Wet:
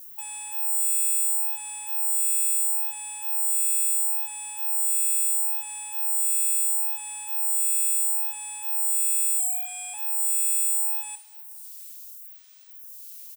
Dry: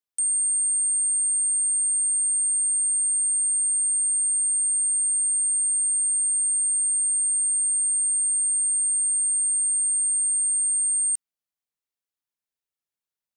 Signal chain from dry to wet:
phase distortion by the signal itself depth 0.11 ms
spectral peaks only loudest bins 32
background noise violet −49 dBFS
soft clipping −29 dBFS, distortion −14 dB
0:09.39–0:09.94: frequency shifter −120 Hz
repeating echo 254 ms, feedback 56%, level −20 dB
convolution reverb RT60 0.40 s, pre-delay 13 ms, DRR 10.5 dB
phaser with staggered stages 0.74 Hz
level +6.5 dB

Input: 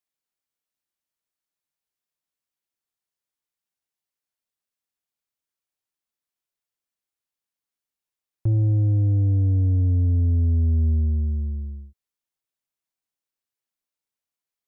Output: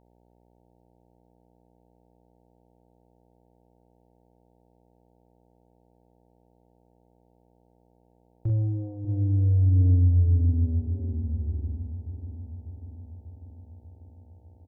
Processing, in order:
ambience of single reflections 33 ms −8 dB, 44 ms −4.5 dB
hum with harmonics 60 Hz, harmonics 15, −57 dBFS −3 dB per octave
bucket-brigade delay 593 ms, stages 2,048, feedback 64%, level −11.5 dB
level −5.5 dB

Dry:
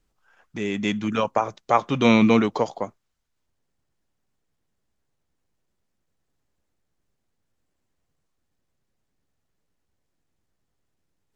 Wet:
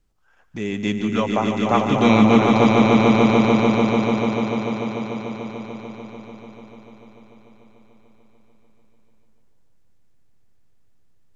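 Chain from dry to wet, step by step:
low-shelf EQ 200 Hz +6 dB
echo that builds up and dies away 147 ms, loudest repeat 5, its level −4.5 dB
level −1 dB

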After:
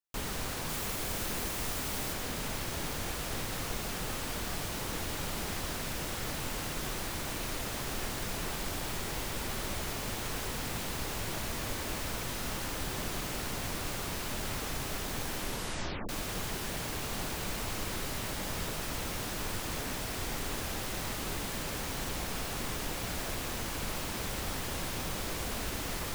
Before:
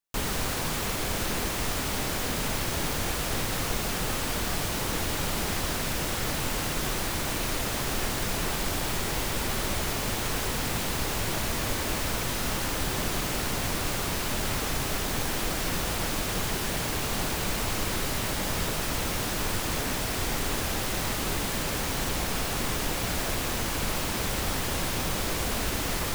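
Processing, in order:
0:00.69–0:02.13: high-shelf EQ 8,200 Hz +5.5 dB
0:15.35: tape stop 0.74 s
level −7 dB

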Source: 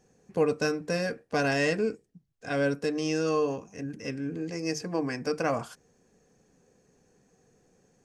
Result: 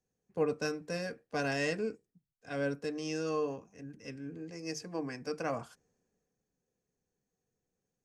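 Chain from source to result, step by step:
multiband upward and downward expander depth 40%
level −7.5 dB

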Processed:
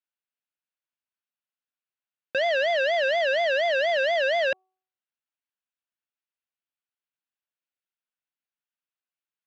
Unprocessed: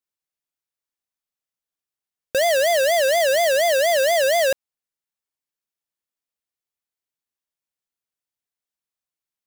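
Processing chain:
loudspeaker in its box 150–4,000 Hz, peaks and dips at 420 Hz −8 dB, 1,500 Hz +6 dB, 2,700 Hz +5 dB
hum removal 375.4 Hz, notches 3
level −5 dB

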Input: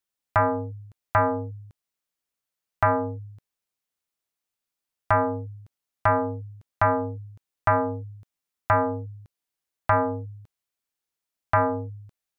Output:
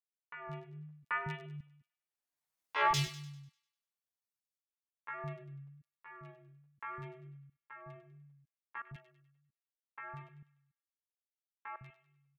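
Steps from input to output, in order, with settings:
source passing by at 0:02.60, 8 m/s, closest 3.3 metres
dynamic equaliser 110 Hz, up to +6 dB, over −52 dBFS, Q 3
in parallel at −1.5 dB: downward compressor 20 to 1, threshold −45 dBFS, peak gain reduction 29 dB
on the sum: wave folding −20 dBFS
flanger 0.38 Hz, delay 8.6 ms, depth 5 ms, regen −3%
shaped tremolo saw up 0.68 Hz, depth 90%
tape wow and flutter 40 cents
three-band delay without the direct sound mids, lows, highs 140/180 ms, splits 230/1,900 Hz
pitch shifter +6 semitones
on a send: delay with a high-pass on its return 99 ms, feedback 44%, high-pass 2,100 Hz, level −10.5 dB
on the sum: level +1.5 dB

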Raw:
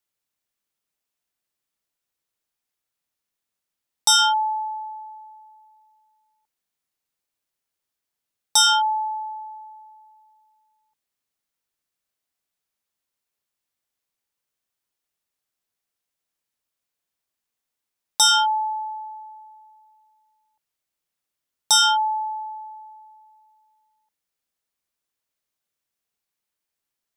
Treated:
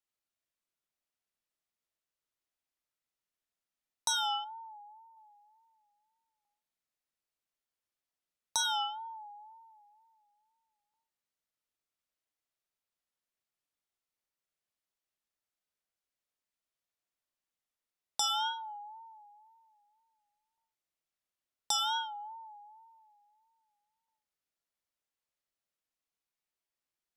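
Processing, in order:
on a send at −3 dB: convolution reverb RT60 0.40 s, pre-delay 20 ms
on the sum: tape wow and flutter 86 cents
high-shelf EQ 8,200 Hz −6 dB
downward compressor 4 to 1, threshold −21 dBFS, peak gain reduction 6.5 dB
0:04.44–0:05.17: parametric band 3,100 Hz −13 dB 2 octaves
level −8.5 dB

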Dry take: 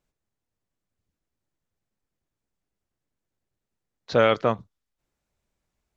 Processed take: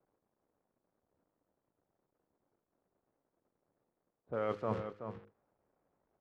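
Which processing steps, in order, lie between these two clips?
spike at every zero crossing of −18.5 dBFS
low-pass filter 1,500 Hz 12 dB per octave
hum removal 53.85 Hz, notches 10
noise gate −44 dBFS, range −19 dB
low-pass that shuts in the quiet parts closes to 530 Hz, open at −18.5 dBFS
reversed playback
downward compressor 12 to 1, threshold −29 dBFS, peak gain reduction 15.5 dB
reversed playback
slap from a distant wall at 62 metres, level −8 dB
wrong playback speed 25 fps video run at 24 fps
level −2.5 dB

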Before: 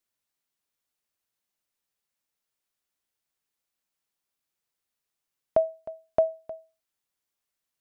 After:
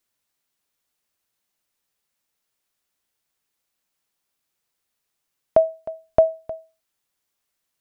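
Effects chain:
0:05.94–0:06.50: low-shelf EQ 110 Hz +11 dB
level +6.5 dB

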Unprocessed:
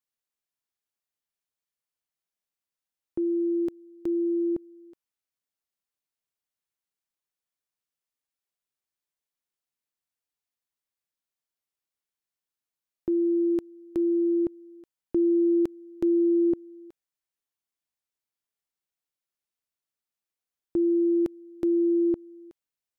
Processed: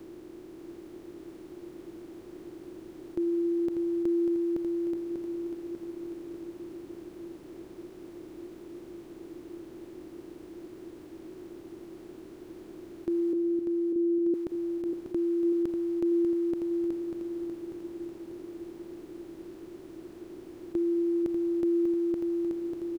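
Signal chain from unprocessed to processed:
compressor on every frequency bin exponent 0.2
0:13.33–0:14.34: transistor ladder low-pass 380 Hz, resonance 60%
repeating echo 593 ms, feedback 58%, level −6 dB
level −5.5 dB

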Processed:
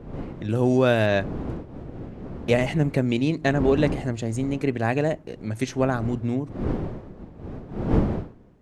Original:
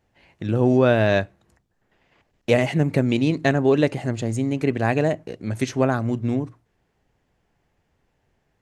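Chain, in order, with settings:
wind on the microphone 280 Hz −29 dBFS
0:00.50–0:01.06: high-shelf EQ 4,600 Hz +12 dB
level −2.5 dB

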